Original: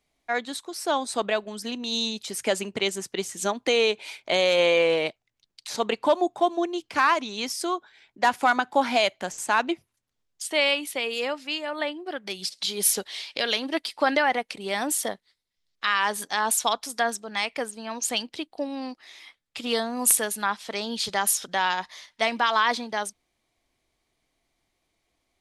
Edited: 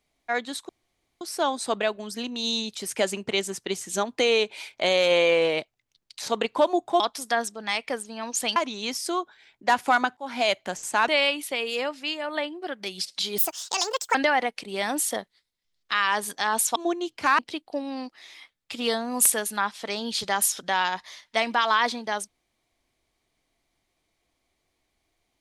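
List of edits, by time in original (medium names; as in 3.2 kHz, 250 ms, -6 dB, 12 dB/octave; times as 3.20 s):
0.69 s: insert room tone 0.52 s
6.48–7.11 s: swap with 16.68–18.24 s
8.72–9.06 s: fade in
9.63–10.52 s: delete
12.82–14.07 s: speed 163%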